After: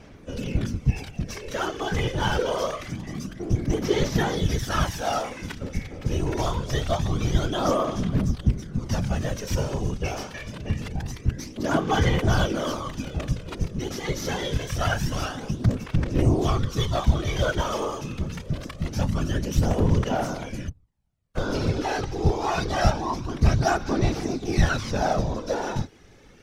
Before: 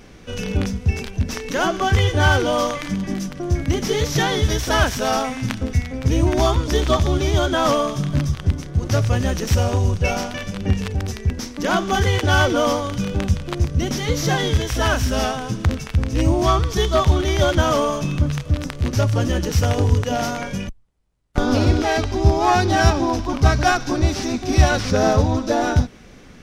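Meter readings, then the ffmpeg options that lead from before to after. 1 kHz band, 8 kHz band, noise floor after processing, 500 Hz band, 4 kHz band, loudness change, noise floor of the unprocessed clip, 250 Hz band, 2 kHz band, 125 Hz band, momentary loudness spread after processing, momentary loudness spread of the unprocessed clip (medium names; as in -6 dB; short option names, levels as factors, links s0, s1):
-7.0 dB, -7.5 dB, -47 dBFS, -6.5 dB, -7.5 dB, -6.5 dB, -43 dBFS, -5.5 dB, -8.0 dB, -6.0 dB, 10 LU, 8 LU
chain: -af "aphaser=in_gain=1:out_gain=1:delay=2.4:decay=0.49:speed=0.25:type=sinusoidal,afftfilt=real='hypot(re,im)*cos(2*PI*random(0))':imag='hypot(re,im)*sin(2*PI*random(1))':win_size=512:overlap=0.75,volume=0.75"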